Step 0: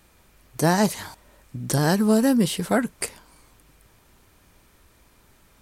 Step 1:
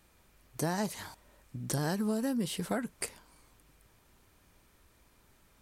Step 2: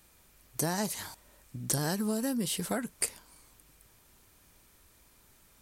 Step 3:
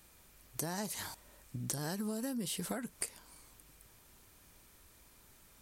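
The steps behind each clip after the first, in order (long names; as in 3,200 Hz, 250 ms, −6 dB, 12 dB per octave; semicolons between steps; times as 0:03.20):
downward compressor 5 to 1, threshold −21 dBFS, peak gain reduction 7 dB; level −7.5 dB
high-shelf EQ 4,400 Hz +9 dB
downward compressor 6 to 1, threshold −35 dBFS, peak gain reduction 10 dB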